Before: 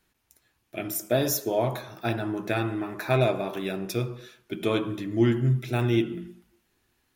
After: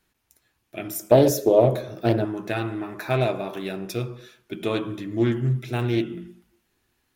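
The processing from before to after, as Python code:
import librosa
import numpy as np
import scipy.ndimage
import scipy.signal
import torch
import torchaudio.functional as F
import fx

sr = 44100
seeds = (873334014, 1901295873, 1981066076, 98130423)

y = fx.low_shelf_res(x, sr, hz=690.0, db=7.0, q=3.0, at=(1.11, 2.25))
y = fx.doppler_dist(y, sr, depth_ms=0.21)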